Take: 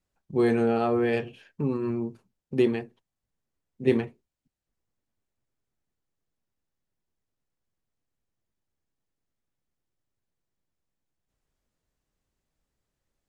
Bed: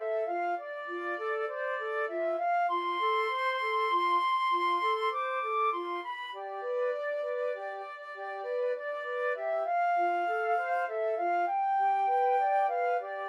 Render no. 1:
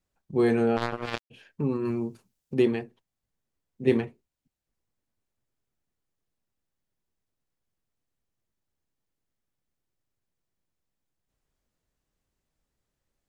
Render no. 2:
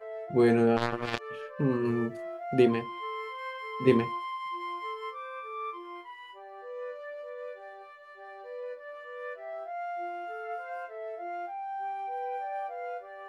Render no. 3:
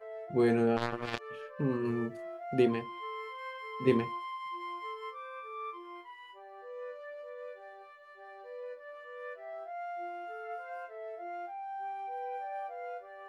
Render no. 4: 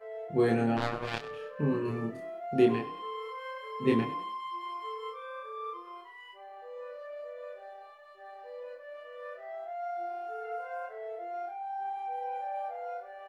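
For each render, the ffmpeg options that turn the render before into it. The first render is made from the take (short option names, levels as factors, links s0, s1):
-filter_complex "[0:a]asplit=3[s0][s1][s2];[s0]afade=t=out:st=0.76:d=0.02[s3];[s1]acrusher=bits=2:mix=0:aa=0.5,afade=t=in:st=0.76:d=0.02,afade=t=out:st=1.3:d=0.02[s4];[s2]afade=t=in:st=1.3:d=0.02[s5];[s3][s4][s5]amix=inputs=3:normalize=0,asettb=1/sr,asplit=3[s6][s7][s8];[s6]atrim=end=1.854[s9];[s7]atrim=start=1.85:end=2.54,asetpts=PTS-STARTPTS,afade=t=in:d=0.004:c=qsin,afade=t=out:st=0.686:d=0.004:c=qsin,highshelf=f=3300:g=11[s10];[s8]atrim=start=2.536[s11];[s9][s10]acrossfade=d=0.004:c1=hsin:c2=qsin[s12];[s12][s11]acrossfade=d=0.004:c1=qsin:c2=hsin"
-filter_complex "[1:a]volume=0.398[s0];[0:a][s0]amix=inputs=2:normalize=0"
-af "volume=0.631"
-filter_complex "[0:a]asplit=2[s0][s1];[s1]adelay=27,volume=0.708[s2];[s0][s2]amix=inputs=2:normalize=0,asplit=5[s3][s4][s5][s6][s7];[s4]adelay=98,afreqshift=33,volume=0.178[s8];[s5]adelay=196,afreqshift=66,volume=0.0708[s9];[s6]adelay=294,afreqshift=99,volume=0.0285[s10];[s7]adelay=392,afreqshift=132,volume=0.0114[s11];[s3][s8][s9][s10][s11]amix=inputs=5:normalize=0"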